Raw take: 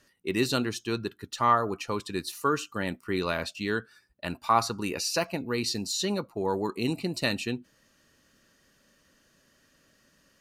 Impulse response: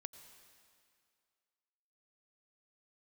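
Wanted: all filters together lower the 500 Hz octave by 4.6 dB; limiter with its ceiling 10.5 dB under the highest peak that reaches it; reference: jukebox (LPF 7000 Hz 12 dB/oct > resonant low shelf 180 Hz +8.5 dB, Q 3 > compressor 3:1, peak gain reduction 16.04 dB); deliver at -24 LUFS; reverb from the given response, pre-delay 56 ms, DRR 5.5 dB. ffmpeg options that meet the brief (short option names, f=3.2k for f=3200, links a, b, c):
-filter_complex "[0:a]equalizer=f=500:t=o:g=-4,alimiter=limit=-21dB:level=0:latency=1,asplit=2[a][b];[1:a]atrim=start_sample=2205,adelay=56[c];[b][c]afir=irnorm=-1:irlink=0,volume=-0.5dB[d];[a][d]amix=inputs=2:normalize=0,lowpass=7k,lowshelf=f=180:t=q:w=3:g=8.5,acompressor=threshold=-43dB:ratio=3,volume=18.5dB"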